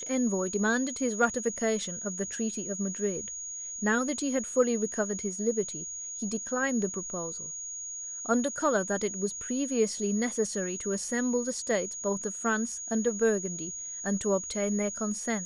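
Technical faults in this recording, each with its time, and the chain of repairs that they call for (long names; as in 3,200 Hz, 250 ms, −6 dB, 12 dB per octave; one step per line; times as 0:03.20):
whistle 6,700 Hz −36 dBFS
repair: notch filter 6,700 Hz, Q 30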